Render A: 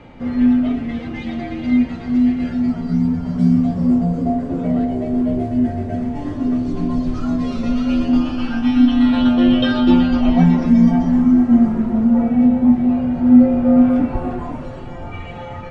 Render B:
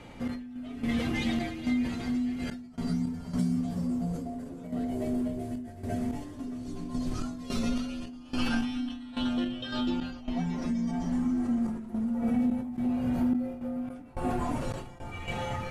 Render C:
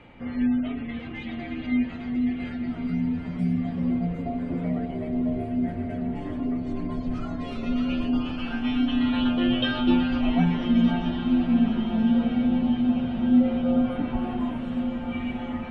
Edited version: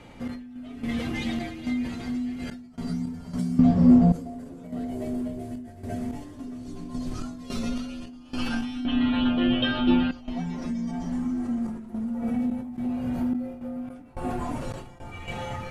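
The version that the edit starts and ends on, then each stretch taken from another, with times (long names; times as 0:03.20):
B
0:03.59–0:04.12: punch in from A
0:08.85–0:10.11: punch in from C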